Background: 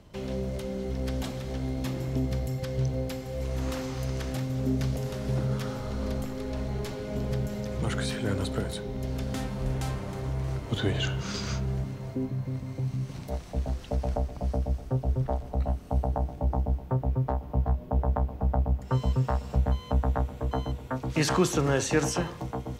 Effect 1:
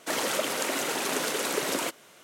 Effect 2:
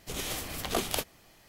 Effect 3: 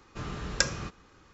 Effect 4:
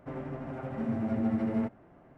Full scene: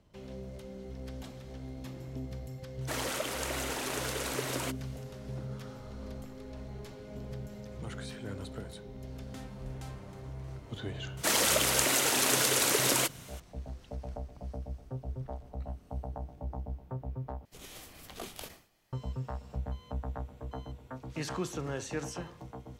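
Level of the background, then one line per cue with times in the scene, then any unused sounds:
background −11.5 dB
0:02.81: mix in 1 −6.5 dB
0:11.17: mix in 1 −1.5 dB + high-shelf EQ 3,100 Hz +8 dB
0:17.45: overwrite with 2 −13.5 dB + level that may fall only so fast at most 120 dB per second
not used: 3, 4

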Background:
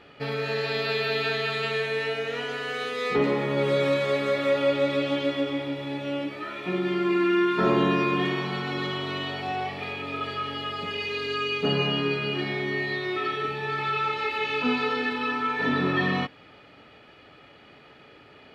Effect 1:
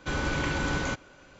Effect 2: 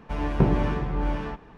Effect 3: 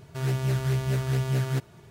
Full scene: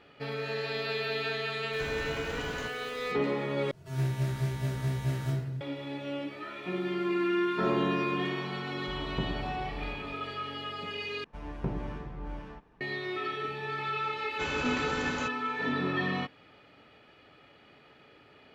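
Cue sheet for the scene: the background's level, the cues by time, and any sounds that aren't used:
background −6 dB
0:01.73: mix in 1 −11 dB + converter with a step at zero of −36 dBFS
0:03.71: overwrite with 3 −13 dB + rectangular room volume 390 cubic metres, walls mixed, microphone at 3 metres
0:06.50: mix in 3 −12 dB + tuned comb filter 240 Hz, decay 0.51 s, mix 100%
0:08.78: mix in 2 −13 dB + Butterworth low-pass 1,600 Hz 72 dB per octave
0:11.24: overwrite with 2 −13 dB
0:14.33: mix in 1 −5.5 dB + high-pass filter 120 Hz 6 dB per octave

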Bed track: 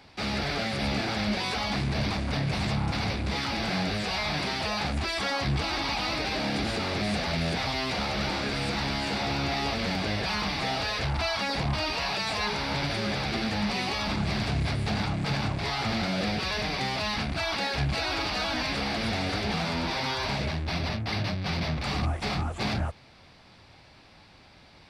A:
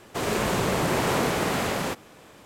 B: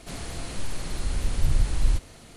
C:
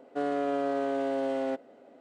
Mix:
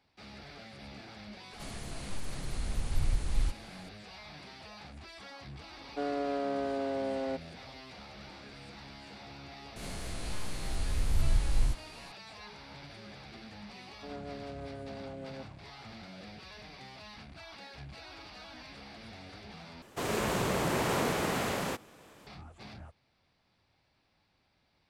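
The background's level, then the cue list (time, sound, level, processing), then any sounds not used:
bed track −19.5 dB
0:01.53: mix in B −7.5 dB
0:05.81: mix in C −4 dB
0:09.76: mix in B −8 dB + peak hold with a rise ahead of every peak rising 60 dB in 1.03 s
0:13.87: mix in C −12.5 dB + rotating-speaker cabinet horn 6.3 Hz
0:19.82: overwrite with A −6 dB

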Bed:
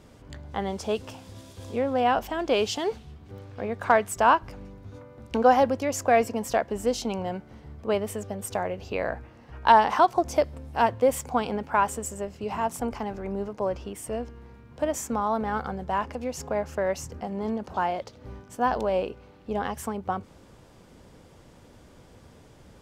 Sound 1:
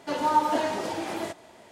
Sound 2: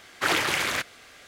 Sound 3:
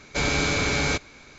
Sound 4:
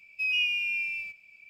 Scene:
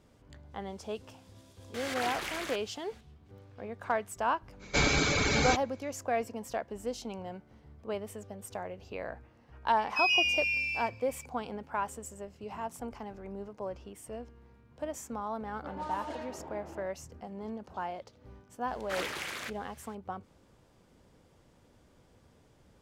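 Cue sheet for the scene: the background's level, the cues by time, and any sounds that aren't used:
bed −10.5 dB
0:01.74: mix in 2 −12.5 dB + background raised ahead of every attack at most 38 dB per second
0:04.59: mix in 3 −1 dB, fades 0.05 s + reverb reduction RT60 1 s
0:09.77: mix in 4 −3.5 dB + parametric band 5,100 Hz +14.5 dB 0.96 octaves
0:15.55: mix in 1 −14.5 dB + low-pass that shuts in the quiet parts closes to 340 Hz, open at −18.5 dBFS
0:18.68: mix in 2 −12.5 dB

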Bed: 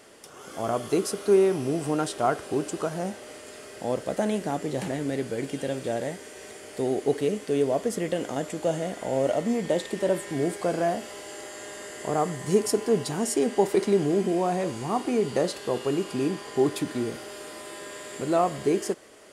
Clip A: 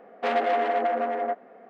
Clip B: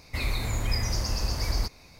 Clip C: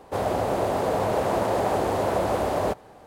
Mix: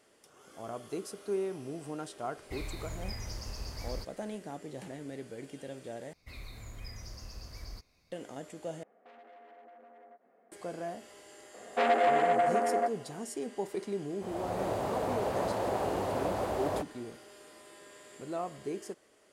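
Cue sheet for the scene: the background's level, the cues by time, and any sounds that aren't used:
bed −13.5 dB
0:02.37: mix in B −12.5 dB
0:06.13: overwrite with B −17.5 dB + notch filter 880 Hz, Q 8.1
0:08.83: overwrite with A −16 dB + downward compressor 4 to 1, threshold −39 dBFS
0:11.54: mix in A −1.5 dB
0:14.09: mix in C −8.5 dB + fade in at the beginning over 0.54 s

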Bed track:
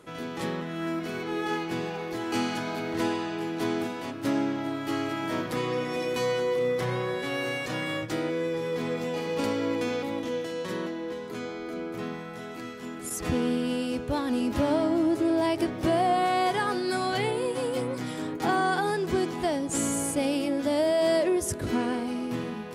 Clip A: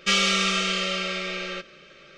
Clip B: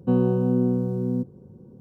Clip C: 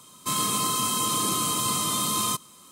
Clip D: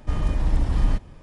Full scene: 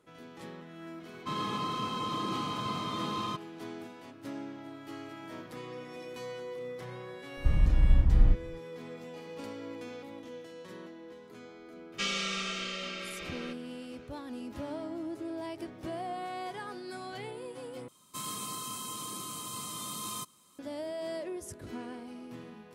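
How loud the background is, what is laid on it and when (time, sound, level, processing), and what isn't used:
bed track −14 dB
0:01.00: mix in C −4.5 dB + high-frequency loss of the air 260 metres
0:07.37: mix in D −11 dB + bass and treble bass +10 dB, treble −12 dB
0:11.92: mix in A −11.5 dB
0:17.88: overwrite with C −14.5 dB + speech leveller within 5 dB 2 s
not used: B

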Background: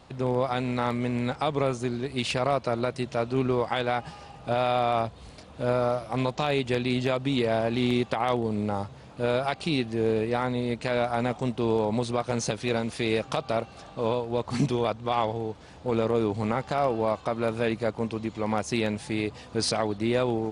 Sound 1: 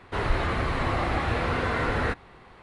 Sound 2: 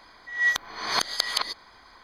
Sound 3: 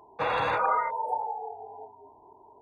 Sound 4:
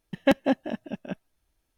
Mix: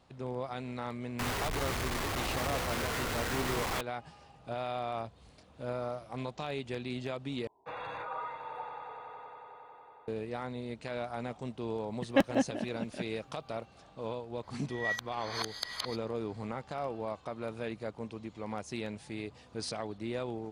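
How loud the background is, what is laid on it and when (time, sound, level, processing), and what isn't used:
background −11.5 dB
0:01.19: mix in 1 −7.5 dB + sign of each sample alone
0:07.47: overwrite with 3 −14 dB + echo that builds up and dies away 92 ms, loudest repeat 5, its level −14 dB
0:11.89: mix in 4 −5 dB + single-tap delay 141 ms −21.5 dB
0:14.43: mix in 2 −11.5 dB

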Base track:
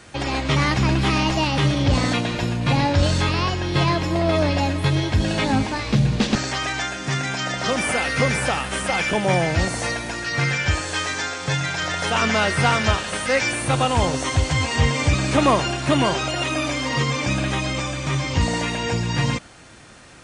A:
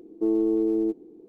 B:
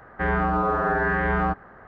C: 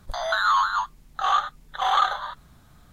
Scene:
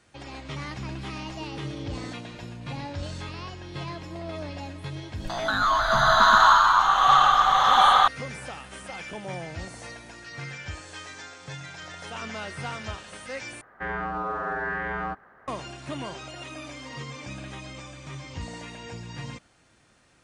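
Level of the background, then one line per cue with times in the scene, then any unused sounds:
base track −16 dB
0:01.19: mix in A −13 dB + downward compressor 2 to 1, threshold −30 dBFS
0:05.16: mix in C −2.5 dB + slow-attack reverb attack 810 ms, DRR −9 dB
0:13.61: overwrite with B −6.5 dB + spectral tilt +2 dB per octave

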